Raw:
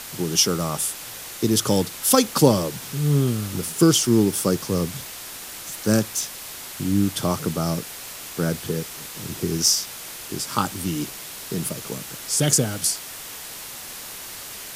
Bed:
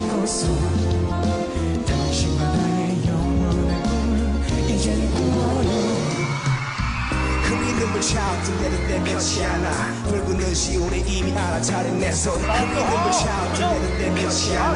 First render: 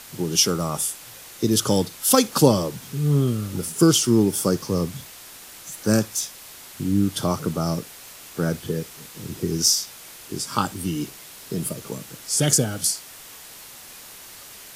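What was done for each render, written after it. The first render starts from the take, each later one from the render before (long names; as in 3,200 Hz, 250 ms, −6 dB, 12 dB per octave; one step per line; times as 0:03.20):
noise reduction from a noise print 6 dB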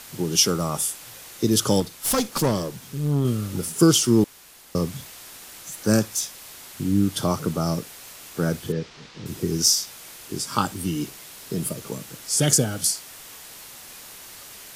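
0:01.80–0:03.25: tube saturation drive 16 dB, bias 0.6
0:04.24–0:04.75: fill with room tone
0:08.72–0:09.26: low-pass filter 5,300 Hz 24 dB per octave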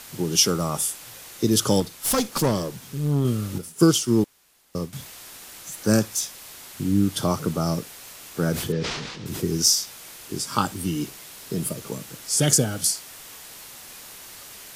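0:03.58–0:04.93: expander for the loud parts, over −36 dBFS
0:08.52–0:09.43: level that may fall only so fast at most 36 dB per second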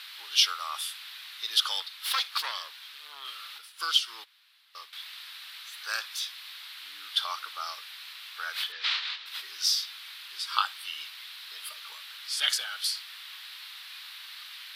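high-pass filter 1,200 Hz 24 dB per octave
high shelf with overshoot 5,200 Hz −10.5 dB, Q 3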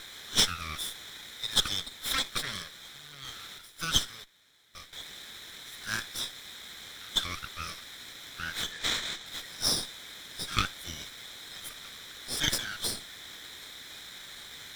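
lower of the sound and its delayed copy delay 0.55 ms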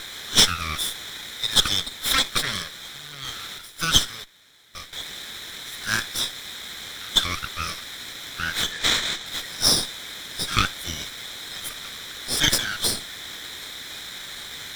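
level +9 dB
brickwall limiter −3 dBFS, peak gain reduction 3 dB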